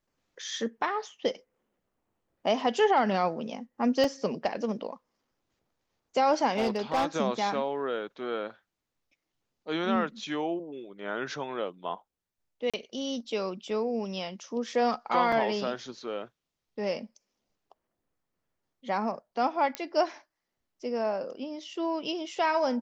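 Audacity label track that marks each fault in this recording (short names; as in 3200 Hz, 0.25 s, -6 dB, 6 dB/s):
4.040000	4.040000	gap 2.6 ms
6.560000	7.050000	clipped -21.5 dBFS
12.700000	12.740000	gap 36 ms
15.320000	15.320000	gap 3.7 ms
19.750000	19.750000	pop -15 dBFS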